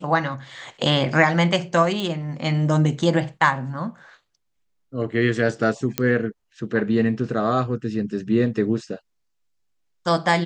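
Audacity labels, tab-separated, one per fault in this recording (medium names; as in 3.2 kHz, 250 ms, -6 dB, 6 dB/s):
2.000000	2.000000	pop -15 dBFS
5.980000	5.980000	pop -4 dBFS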